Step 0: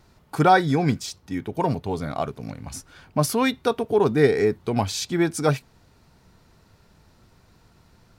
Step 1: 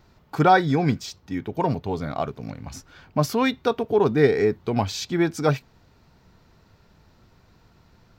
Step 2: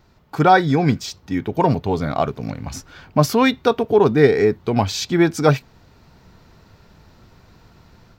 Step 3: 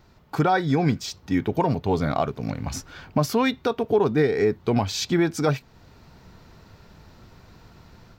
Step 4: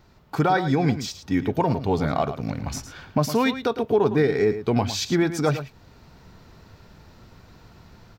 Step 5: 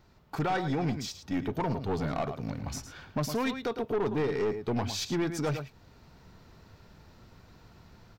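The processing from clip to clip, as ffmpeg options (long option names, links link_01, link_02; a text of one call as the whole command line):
ffmpeg -i in.wav -af "equalizer=frequency=9800:width=1.7:gain=-15" out.wav
ffmpeg -i in.wav -af "dynaudnorm=framelen=280:gausssize=3:maxgain=6dB,volume=1dB" out.wav
ffmpeg -i in.wav -af "alimiter=limit=-11dB:level=0:latency=1:release=391" out.wav
ffmpeg -i in.wav -af "aecho=1:1:109:0.266" out.wav
ffmpeg -i in.wav -af "aeval=exprs='(tanh(8.91*val(0)+0.25)-tanh(0.25))/8.91':channel_layout=same,volume=-5dB" out.wav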